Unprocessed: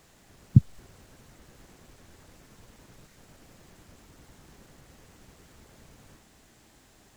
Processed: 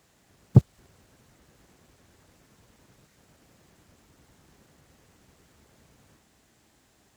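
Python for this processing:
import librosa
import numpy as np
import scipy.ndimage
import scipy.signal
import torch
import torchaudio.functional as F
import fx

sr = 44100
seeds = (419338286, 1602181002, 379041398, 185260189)

y = scipy.signal.sosfilt(scipy.signal.butter(2, 51.0, 'highpass', fs=sr, output='sos'), x)
y = fx.leveller(y, sr, passes=2)
y = F.gain(torch.from_numpy(y), -1.0).numpy()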